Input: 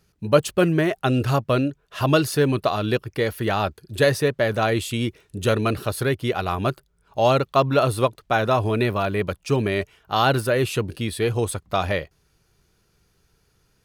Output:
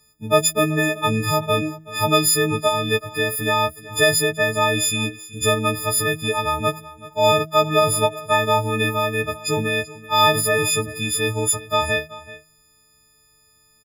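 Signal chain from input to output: frequency quantiser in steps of 6 st; de-hum 159.5 Hz, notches 4; on a send: echo 0.38 s -18 dB; on the sum: gain -1.5 dB

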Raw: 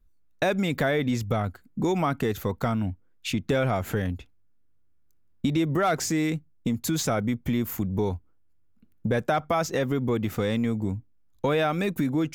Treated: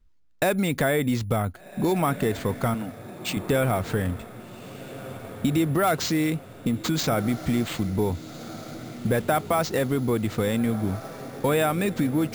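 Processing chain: 2.74–3.37 HPF 280 Hz; diffused feedback echo 1.533 s, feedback 53%, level -14 dB; careless resampling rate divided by 4×, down none, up hold; gain +1.5 dB

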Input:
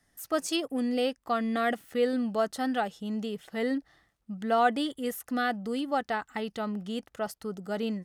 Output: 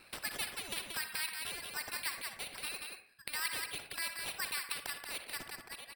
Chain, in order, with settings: ending faded out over 0.94 s; steep high-pass 1100 Hz 36 dB/oct; treble ducked by the level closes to 2700 Hz, closed at -36 dBFS; sample-rate reducer 4900 Hz, jitter 0%; reverb removal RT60 1.5 s; echo 0.243 s -9 dB; reverb RT60 0.50 s, pre-delay 57 ms, DRR 12.5 dB; speed mistake 33 rpm record played at 45 rpm; spectral compressor 2:1

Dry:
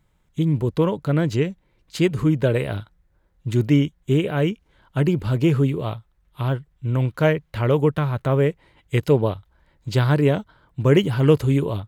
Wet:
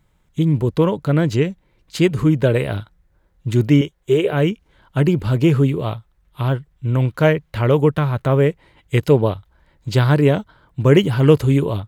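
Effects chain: 3.81–4.33 resonant low shelf 320 Hz -6.5 dB, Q 3; gain +3.5 dB

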